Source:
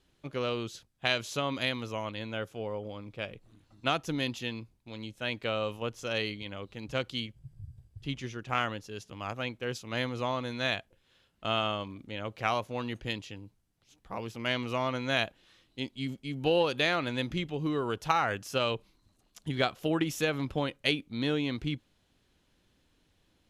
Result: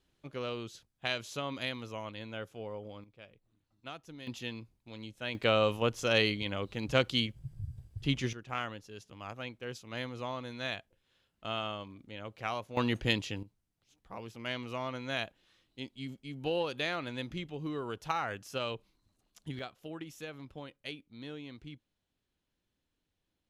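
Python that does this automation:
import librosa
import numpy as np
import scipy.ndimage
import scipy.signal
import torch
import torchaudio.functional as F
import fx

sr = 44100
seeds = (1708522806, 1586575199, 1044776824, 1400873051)

y = fx.gain(x, sr, db=fx.steps((0.0, -5.5), (3.04, -16.0), (4.27, -4.0), (5.35, 5.0), (8.33, -6.5), (12.77, 5.5), (13.43, -6.5), (19.59, -14.5)))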